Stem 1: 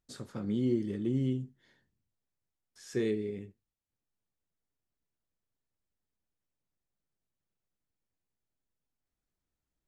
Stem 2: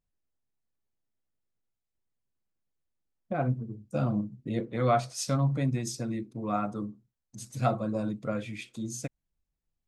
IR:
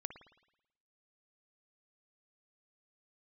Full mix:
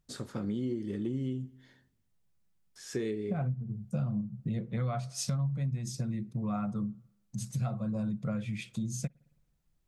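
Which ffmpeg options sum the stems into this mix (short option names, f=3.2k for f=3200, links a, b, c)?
-filter_complex "[0:a]volume=3dB,asplit=2[a][b];[b]volume=-13.5dB[c];[1:a]lowshelf=f=230:t=q:w=3:g=7,volume=0.5dB,asplit=2[d][e];[e]volume=-19.5dB[f];[2:a]atrim=start_sample=2205[g];[c][f]amix=inputs=2:normalize=0[h];[h][g]afir=irnorm=-1:irlink=0[i];[a][d][i]amix=inputs=3:normalize=0,acompressor=threshold=-31dB:ratio=5"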